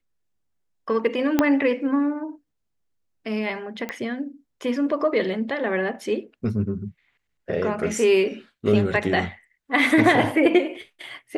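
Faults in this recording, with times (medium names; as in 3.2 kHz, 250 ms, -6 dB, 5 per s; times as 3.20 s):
1.39 s: pop -5 dBFS
3.89 s: pop -15 dBFS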